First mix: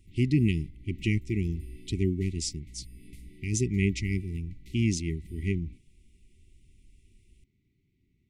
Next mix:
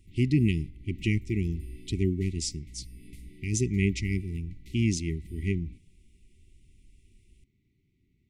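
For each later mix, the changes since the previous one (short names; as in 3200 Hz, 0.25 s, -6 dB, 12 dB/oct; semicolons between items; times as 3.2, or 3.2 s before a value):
reverb: on, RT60 0.75 s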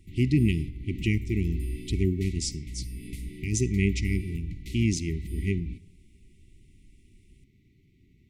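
speech: send +11.5 dB; background +9.5 dB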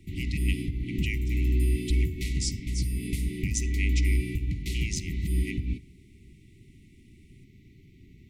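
speech: add HPF 1100 Hz; background +8.0 dB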